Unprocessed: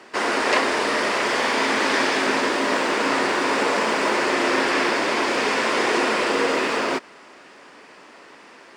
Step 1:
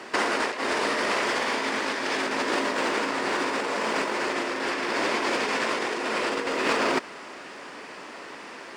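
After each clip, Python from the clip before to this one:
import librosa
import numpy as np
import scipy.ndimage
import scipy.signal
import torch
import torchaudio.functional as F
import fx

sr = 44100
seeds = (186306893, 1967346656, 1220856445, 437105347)

y = fx.over_compress(x, sr, threshold_db=-25.0, ratio=-0.5)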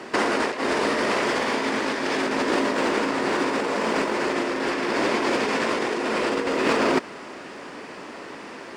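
y = fx.low_shelf(x, sr, hz=490.0, db=8.5)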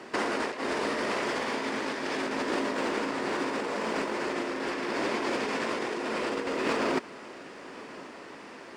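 y = x + 10.0 ** (-20.0 / 20.0) * np.pad(x, (int(1086 * sr / 1000.0), 0))[:len(x)]
y = F.gain(torch.from_numpy(y), -7.0).numpy()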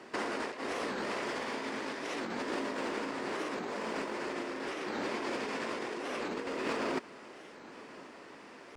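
y = fx.record_warp(x, sr, rpm=45.0, depth_cents=250.0)
y = F.gain(torch.from_numpy(y), -6.0).numpy()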